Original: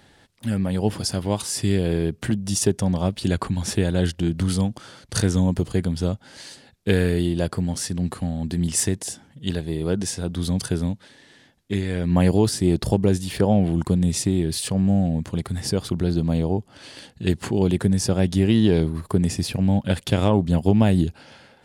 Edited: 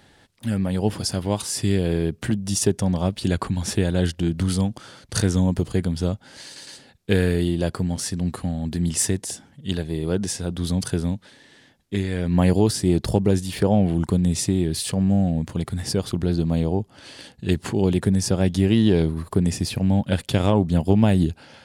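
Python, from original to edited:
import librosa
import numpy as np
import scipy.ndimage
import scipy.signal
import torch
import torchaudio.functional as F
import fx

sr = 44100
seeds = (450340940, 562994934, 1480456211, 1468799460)

y = fx.edit(x, sr, fx.stutter(start_s=6.45, slice_s=0.11, count=3), tone=tone)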